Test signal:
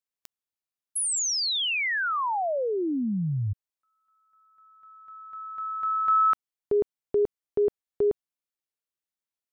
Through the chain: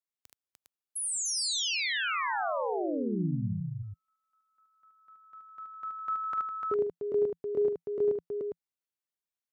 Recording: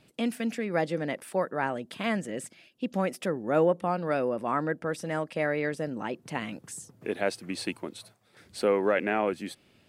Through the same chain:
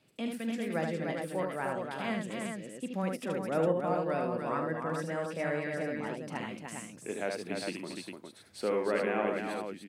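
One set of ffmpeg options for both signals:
-filter_complex "[0:a]asplit=2[s0][s1];[s1]aecho=0:1:43|75|298|406:0.237|0.596|0.562|0.531[s2];[s0][s2]amix=inputs=2:normalize=0,adynamicequalizer=threshold=0.00447:dfrequency=170:dqfactor=6.5:tfrequency=170:tqfactor=6.5:attack=5:release=100:ratio=0.375:range=2:mode=boostabove:tftype=bell,highpass=76,volume=0.447"

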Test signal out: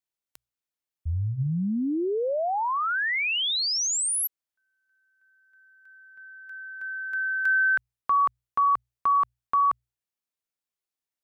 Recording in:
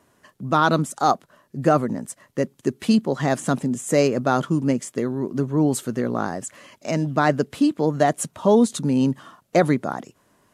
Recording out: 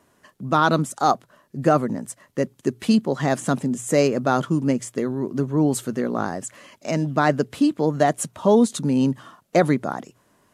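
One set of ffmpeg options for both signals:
-af "bandreject=f=60:t=h:w=6,bandreject=f=120:t=h:w=6"

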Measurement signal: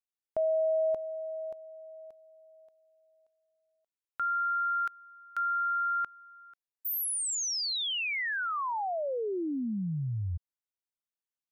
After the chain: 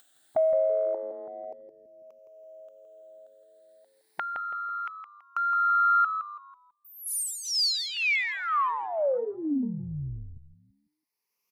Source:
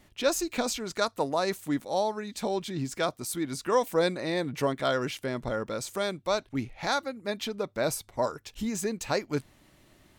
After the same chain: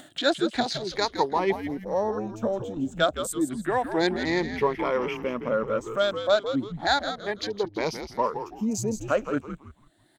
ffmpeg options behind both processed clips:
-filter_complex "[0:a]afftfilt=real='re*pow(10,14/40*sin(2*PI*(0.83*log(max(b,1)*sr/1024/100)/log(2)-(0.31)*(pts-256)/sr)))':imag='im*pow(10,14/40*sin(2*PI*(0.83*log(max(b,1)*sr/1024/100)/log(2)-(0.31)*(pts-256)/sr)))':win_size=1024:overlap=0.75,acrossover=split=9300[s0][s1];[s1]acompressor=threshold=0.00355:ratio=4:attack=1:release=60[s2];[s0][s2]amix=inputs=2:normalize=0,afwtdn=0.0126,highpass=210,acompressor=mode=upward:threshold=0.0224:ratio=2.5:attack=22:release=914:knee=2.83:detection=peak,asplit=5[s3][s4][s5][s6][s7];[s4]adelay=165,afreqshift=-100,volume=0.355[s8];[s5]adelay=330,afreqshift=-200,volume=0.11[s9];[s6]adelay=495,afreqshift=-300,volume=0.0343[s10];[s7]adelay=660,afreqshift=-400,volume=0.0106[s11];[s3][s8][s9][s10][s11]amix=inputs=5:normalize=0,volume=1.19"

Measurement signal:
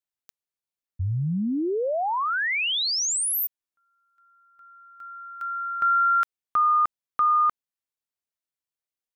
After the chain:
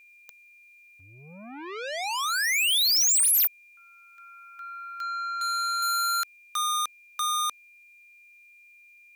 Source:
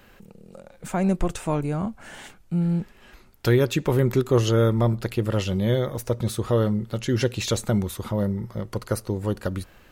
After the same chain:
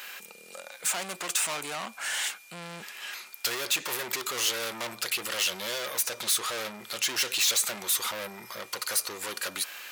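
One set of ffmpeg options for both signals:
-filter_complex "[0:a]asplit=2[s0][s1];[s1]highpass=f=720:p=1,volume=44.7,asoftclip=type=tanh:threshold=0.422[s2];[s0][s2]amix=inputs=2:normalize=0,lowpass=f=2900:p=1,volume=0.501,aderivative,aeval=exprs='val(0)+0.00251*sin(2*PI*2400*n/s)':c=same"

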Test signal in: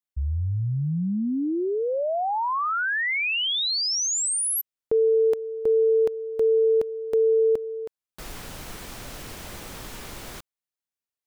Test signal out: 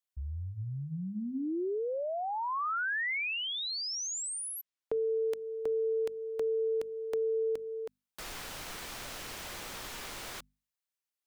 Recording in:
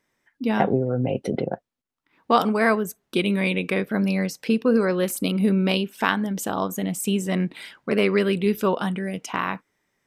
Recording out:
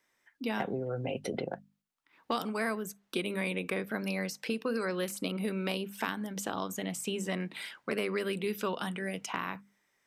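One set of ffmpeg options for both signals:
-filter_complex "[0:a]lowshelf=f=490:g=-10,bandreject=f=50:t=h:w=6,bandreject=f=100:t=h:w=6,bandreject=f=150:t=h:w=6,bandreject=f=200:t=h:w=6,bandreject=f=250:t=h:w=6,acrossover=split=350|1700|7000[s0][s1][s2][s3];[s0]acompressor=threshold=0.0178:ratio=4[s4];[s1]acompressor=threshold=0.0158:ratio=4[s5];[s2]acompressor=threshold=0.00891:ratio=4[s6];[s3]acompressor=threshold=0.00398:ratio=4[s7];[s4][s5][s6][s7]amix=inputs=4:normalize=0"

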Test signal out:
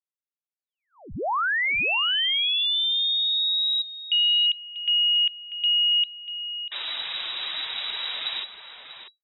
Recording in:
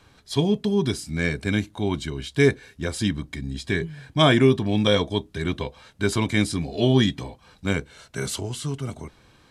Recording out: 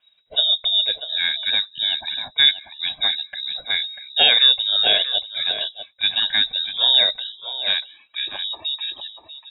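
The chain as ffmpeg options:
-filter_complex "[0:a]lowpass=f=3300:t=q:w=0.5098,lowpass=f=3300:t=q:w=0.6013,lowpass=f=3300:t=q:w=0.9,lowpass=f=3300:t=q:w=2.563,afreqshift=-3900,afftdn=nr=16:nf=-44,asplit=2[s0][s1];[s1]adelay=641.4,volume=0.447,highshelf=f=4000:g=-14.4[s2];[s0][s2]amix=inputs=2:normalize=0,volume=1.26"

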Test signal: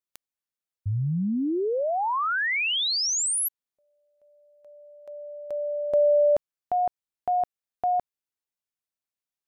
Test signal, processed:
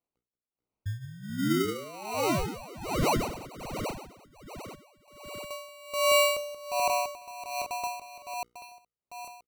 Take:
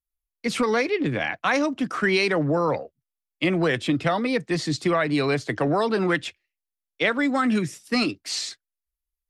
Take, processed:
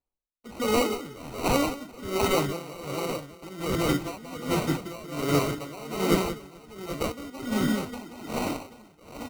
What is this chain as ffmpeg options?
-af "equalizer=f=1800:t=o:w=1.6:g=-3.5,bandreject=f=60:t=h:w=6,bandreject=f=120:t=h:w=6,bandreject=f=180:t=h:w=6,bandreject=f=240:t=h:w=6,bandreject=f=300:t=h:w=6,bandreject=f=360:t=h:w=6,bandreject=f=420:t=h:w=6,bandreject=f=480:t=h:w=6,acrusher=samples=26:mix=1:aa=0.000001,aecho=1:1:180|432|784.8|1279|1970:0.631|0.398|0.251|0.158|0.1,aeval=exprs='val(0)*pow(10,-19*(0.5-0.5*cos(2*PI*1.3*n/s))/20)':c=same"

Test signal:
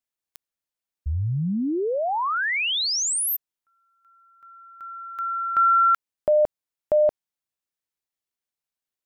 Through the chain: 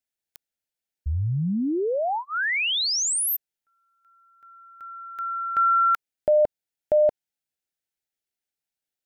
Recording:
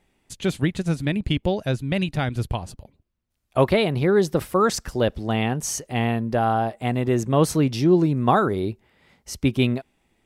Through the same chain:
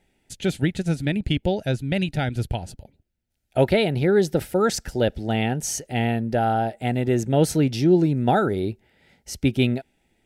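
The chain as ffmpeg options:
-af "asuperstop=centerf=1100:order=4:qfactor=2.7"

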